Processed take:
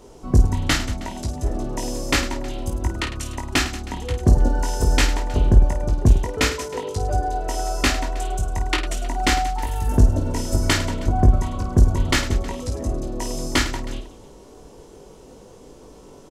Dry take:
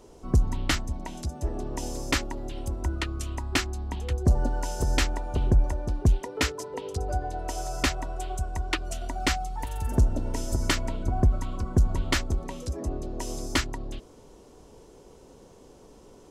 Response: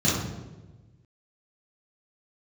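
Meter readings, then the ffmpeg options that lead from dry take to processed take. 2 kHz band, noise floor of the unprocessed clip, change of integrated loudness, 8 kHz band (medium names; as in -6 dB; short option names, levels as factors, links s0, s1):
+6.5 dB, -52 dBFS, +7.0 dB, +6.5 dB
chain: -af "aecho=1:1:20|52|103.2|185.1|316.2:0.631|0.398|0.251|0.158|0.1,volume=1.68"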